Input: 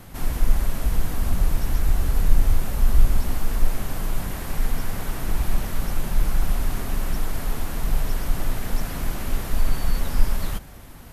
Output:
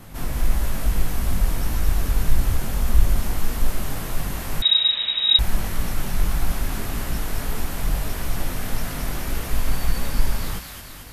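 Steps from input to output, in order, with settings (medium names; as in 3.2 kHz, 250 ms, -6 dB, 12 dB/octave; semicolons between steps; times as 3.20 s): chorus 1.7 Hz, delay 17 ms, depth 6 ms; feedback echo behind a high-pass 221 ms, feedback 63%, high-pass 1.6 kHz, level -3 dB; 4.62–5.39 s: frequency inversion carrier 3.8 kHz; trim +4 dB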